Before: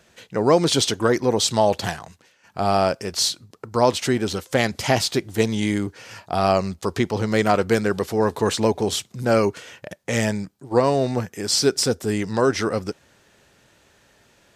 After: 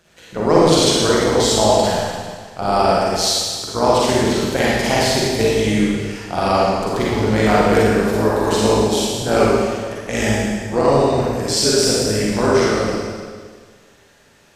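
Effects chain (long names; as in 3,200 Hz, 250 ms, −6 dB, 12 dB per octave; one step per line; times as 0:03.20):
amplitude modulation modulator 170 Hz, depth 55%
four-comb reverb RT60 1.7 s, DRR −6.5 dB
level +1 dB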